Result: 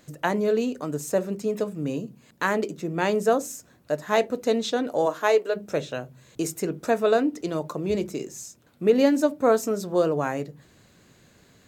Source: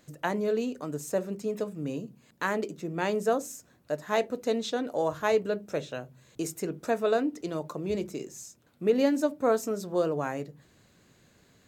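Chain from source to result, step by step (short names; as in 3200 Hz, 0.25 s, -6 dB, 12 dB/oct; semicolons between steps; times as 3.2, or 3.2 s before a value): 5.05–5.55 HPF 200 Hz -> 420 Hz 24 dB/oct; gain +5 dB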